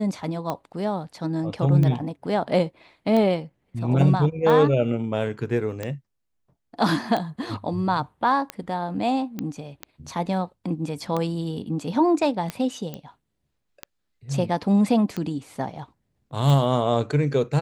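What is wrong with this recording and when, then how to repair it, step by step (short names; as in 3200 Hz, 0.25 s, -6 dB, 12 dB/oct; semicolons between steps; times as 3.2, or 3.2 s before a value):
tick 45 rpm -14 dBFS
9.39 pop -16 dBFS
12.94 pop -18 dBFS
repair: de-click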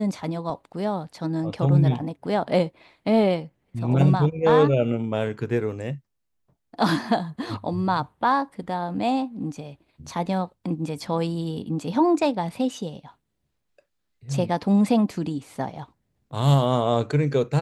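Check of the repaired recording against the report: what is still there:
none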